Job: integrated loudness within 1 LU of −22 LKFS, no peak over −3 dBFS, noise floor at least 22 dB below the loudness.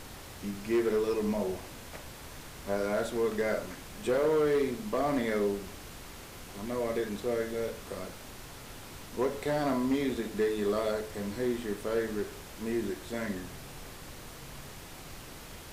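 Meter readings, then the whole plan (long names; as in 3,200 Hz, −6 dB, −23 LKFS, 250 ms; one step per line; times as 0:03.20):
share of clipped samples 0.9%; peaks flattened at −22.0 dBFS; background noise floor −47 dBFS; target noise floor −54 dBFS; integrated loudness −32.0 LKFS; sample peak −22.0 dBFS; target loudness −22.0 LKFS
→ clipped peaks rebuilt −22 dBFS
noise reduction from a noise print 7 dB
level +10 dB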